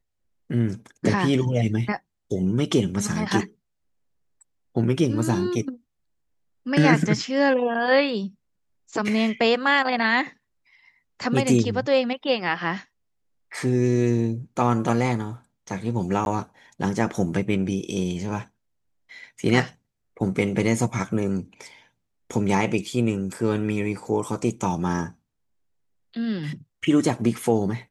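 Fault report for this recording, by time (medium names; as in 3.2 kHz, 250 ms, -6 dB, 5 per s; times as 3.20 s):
16.25–16.26 s: dropout 11 ms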